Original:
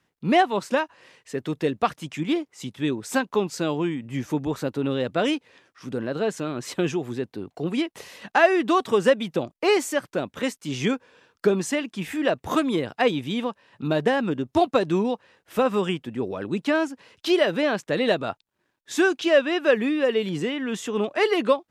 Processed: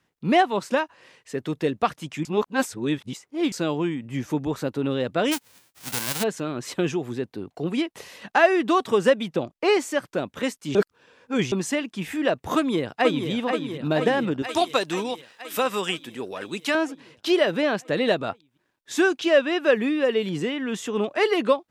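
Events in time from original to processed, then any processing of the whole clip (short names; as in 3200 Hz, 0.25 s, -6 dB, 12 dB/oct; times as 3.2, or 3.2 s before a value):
2.25–3.52 reverse
5.31–6.22 spectral whitening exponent 0.1
9.29–9.94 high shelf 9000 Hz -8.5 dB
10.75–11.52 reverse
12.56–13.29 echo throw 0.48 s, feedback 70%, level -6 dB
14.42–16.75 tilt +3.5 dB/oct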